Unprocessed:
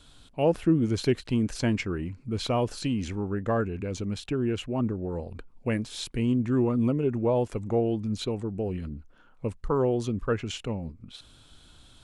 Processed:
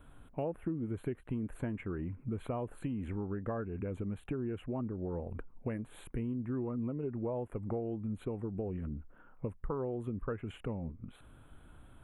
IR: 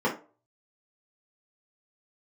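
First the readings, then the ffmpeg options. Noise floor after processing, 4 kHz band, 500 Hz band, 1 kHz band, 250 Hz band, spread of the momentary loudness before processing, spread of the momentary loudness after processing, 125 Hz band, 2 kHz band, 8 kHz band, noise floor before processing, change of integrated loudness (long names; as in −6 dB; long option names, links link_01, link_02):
−59 dBFS, below −20 dB, −11.0 dB, −11.0 dB, −10.0 dB, 12 LU, 6 LU, −9.0 dB, −13.0 dB, below −20 dB, −56 dBFS, −10.5 dB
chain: -af "acompressor=threshold=-34dB:ratio=6,asuperstop=centerf=5200:order=4:qfactor=0.5"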